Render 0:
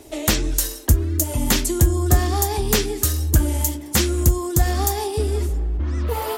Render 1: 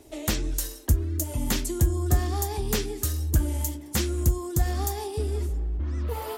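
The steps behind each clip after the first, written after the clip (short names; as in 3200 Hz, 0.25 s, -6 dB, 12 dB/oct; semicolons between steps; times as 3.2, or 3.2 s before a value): low shelf 320 Hz +3.5 dB; gain -9 dB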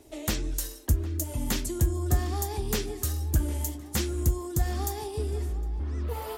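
tape echo 0.76 s, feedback 58%, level -15.5 dB, low-pass 2300 Hz; gain -2.5 dB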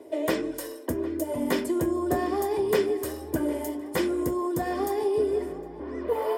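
reverb RT60 0.45 s, pre-delay 3 ms, DRR 11 dB; gain +3 dB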